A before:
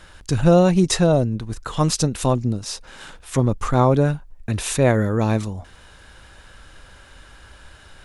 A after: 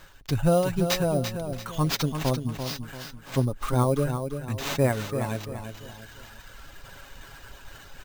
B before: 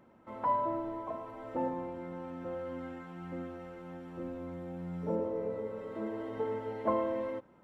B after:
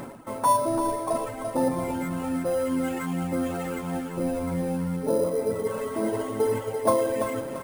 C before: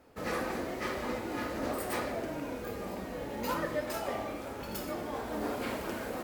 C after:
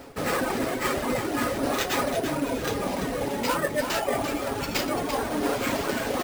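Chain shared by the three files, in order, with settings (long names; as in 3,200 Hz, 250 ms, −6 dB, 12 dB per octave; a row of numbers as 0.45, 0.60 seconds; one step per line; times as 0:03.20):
reverb reduction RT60 1.8 s
high-shelf EQ 8,500 Hz +6.5 dB
comb filter 7.3 ms, depth 37%
reversed playback
upward compression, threshold −27 dBFS
reversed playback
sample-rate reduction 9,900 Hz, jitter 0%
on a send: repeating echo 340 ms, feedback 37%, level −8 dB
on the sum: loudness normalisation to −27 LKFS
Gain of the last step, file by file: −7.0, +8.5, +6.5 decibels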